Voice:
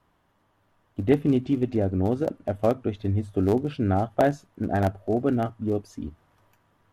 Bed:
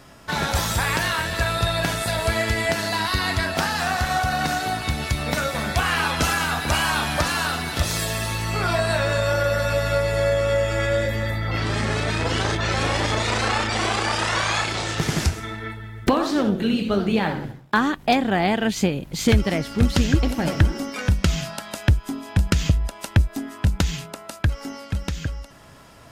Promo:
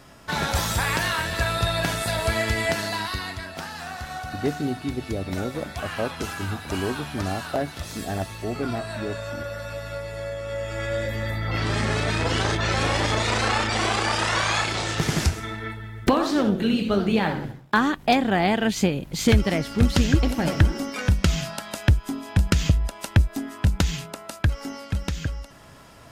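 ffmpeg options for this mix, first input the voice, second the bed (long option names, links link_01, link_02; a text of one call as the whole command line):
ffmpeg -i stem1.wav -i stem2.wav -filter_complex "[0:a]adelay=3350,volume=-5.5dB[link_01];[1:a]volume=9.5dB,afade=type=out:start_time=2.71:duration=0.67:silence=0.316228,afade=type=in:start_time=10.43:duration=1.27:silence=0.281838[link_02];[link_01][link_02]amix=inputs=2:normalize=0" out.wav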